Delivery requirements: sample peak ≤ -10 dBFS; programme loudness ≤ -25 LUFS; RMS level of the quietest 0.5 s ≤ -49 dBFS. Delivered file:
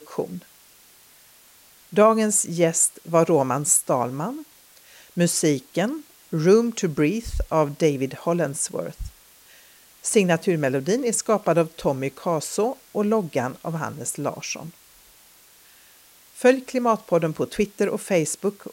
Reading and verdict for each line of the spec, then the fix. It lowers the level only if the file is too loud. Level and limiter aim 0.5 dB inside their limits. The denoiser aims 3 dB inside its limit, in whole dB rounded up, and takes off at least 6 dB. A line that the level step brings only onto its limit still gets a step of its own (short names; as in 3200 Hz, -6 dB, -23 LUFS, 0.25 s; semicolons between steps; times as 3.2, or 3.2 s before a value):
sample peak -5.0 dBFS: fail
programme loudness -22.5 LUFS: fail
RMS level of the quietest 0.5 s -53 dBFS: OK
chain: gain -3 dB; limiter -10.5 dBFS